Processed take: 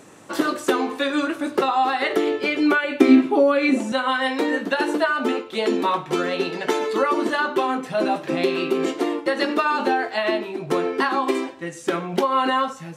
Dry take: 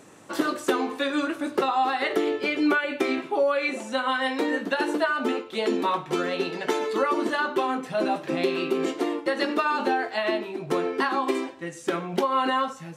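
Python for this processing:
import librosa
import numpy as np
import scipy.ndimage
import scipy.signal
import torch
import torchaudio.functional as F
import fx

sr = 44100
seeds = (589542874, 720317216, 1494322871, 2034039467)

y = fx.peak_eq(x, sr, hz=260.0, db=14.0, octaves=0.72, at=(3.0, 3.92))
y = F.gain(torch.from_numpy(y), 3.5).numpy()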